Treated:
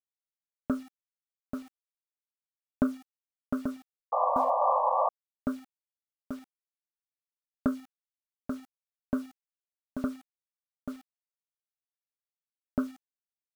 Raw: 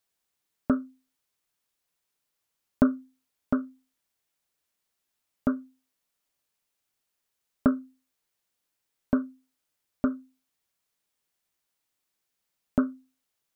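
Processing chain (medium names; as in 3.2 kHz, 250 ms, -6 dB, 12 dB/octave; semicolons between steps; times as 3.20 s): delay 836 ms -7 dB; word length cut 8-bit, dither none; painted sound noise, 4.12–5.09 s, 490–1200 Hz -20 dBFS; trim -5.5 dB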